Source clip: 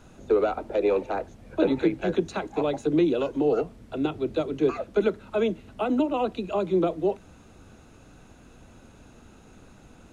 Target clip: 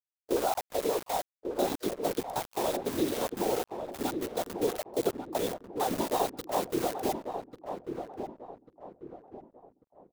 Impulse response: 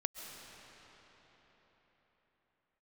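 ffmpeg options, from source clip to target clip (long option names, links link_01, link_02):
-filter_complex "[0:a]aeval=exprs='val(0)+0.00708*(sin(2*PI*50*n/s)+sin(2*PI*2*50*n/s)/2+sin(2*PI*3*50*n/s)/3+sin(2*PI*4*50*n/s)/4+sin(2*PI*5*50*n/s)/5)':channel_layout=same,equalizer=frequency=830:width_type=o:width=0.75:gain=12,afwtdn=0.0562,acrossover=split=120|860|1200[link_01][link_02][link_03][link_04];[link_04]aexciter=amount=13.3:drive=6.6:freq=3100[link_05];[link_01][link_02][link_03][link_05]amix=inputs=4:normalize=0,lowpass=5600,afftfilt=real='hypot(re,im)*cos(2*PI*random(0))':imag='hypot(re,im)*sin(2*PI*random(1))':win_size=512:overlap=0.75,bandreject=frequency=50:width_type=h:width=6,bandreject=frequency=100:width_type=h:width=6,bandreject=frequency=150:width_type=h:width=6,aeval=exprs='val(0)*gte(abs(val(0)),0.0251)':channel_layout=same,crystalizer=i=2:c=0,agate=range=-33dB:threshold=-34dB:ratio=3:detection=peak,asplit=2[link_06][link_07];[link_07]asetrate=55563,aresample=44100,atempo=0.793701,volume=-18dB[link_08];[link_06][link_08]amix=inputs=2:normalize=0,asplit=2[link_09][link_10];[link_10]adelay=1143,lowpass=frequency=960:poles=1,volume=-6dB,asplit=2[link_11][link_12];[link_12]adelay=1143,lowpass=frequency=960:poles=1,volume=0.41,asplit=2[link_13][link_14];[link_14]adelay=1143,lowpass=frequency=960:poles=1,volume=0.41,asplit=2[link_15][link_16];[link_16]adelay=1143,lowpass=frequency=960:poles=1,volume=0.41,asplit=2[link_17][link_18];[link_18]adelay=1143,lowpass=frequency=960:poles=1,volume=0.41[link_19];[link_09][link_11][link_13][link_15][link_17][link_19]amix=inputs=6:normalize=0,volume=-4dB"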